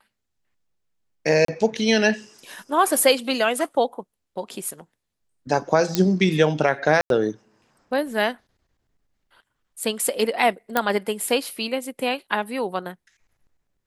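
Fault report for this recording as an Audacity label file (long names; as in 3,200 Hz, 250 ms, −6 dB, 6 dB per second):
1.450000	1.480000	drop-out 33 ms
5.950000	5.950000	click −4 dBFS
7.010000	7.100000	drop-out 92 ms
10.770000	10.770000	click −5 dBFS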